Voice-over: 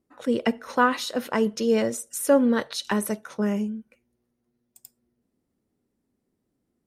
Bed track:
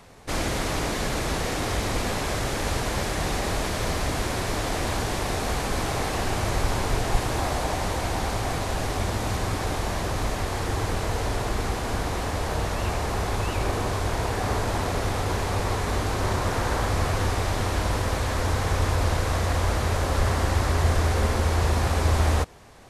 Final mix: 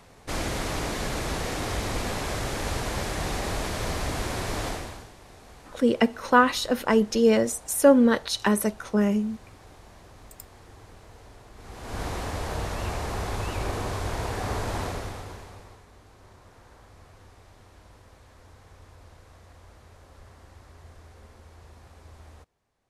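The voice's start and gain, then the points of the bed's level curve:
5.55 s, +2.5 dB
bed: 4.68 s -3 dB
5.14 s -22.5 dB
11.53 s -22.5 dB
12.02 s -4 dB
14.84 s -4 dB
15.89 s -27.5 dB

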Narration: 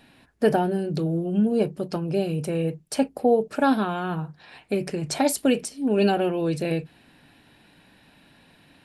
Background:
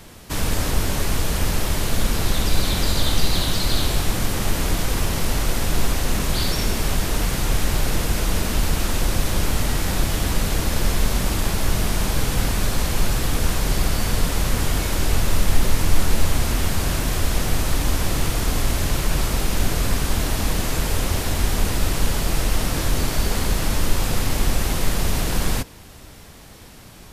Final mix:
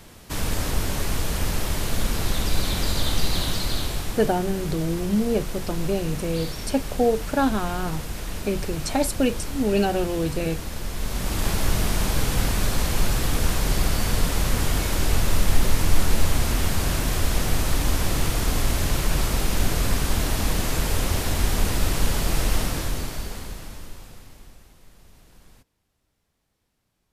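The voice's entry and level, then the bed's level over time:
3.75 s, -1.0 dB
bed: 3.49 s -3.5 dB
4.45 s -10.5 dB
10.9 s -10.5 dB
11.48 s -1.5 dB
22.57 s -1.5 dB
24.74 s -31 dB

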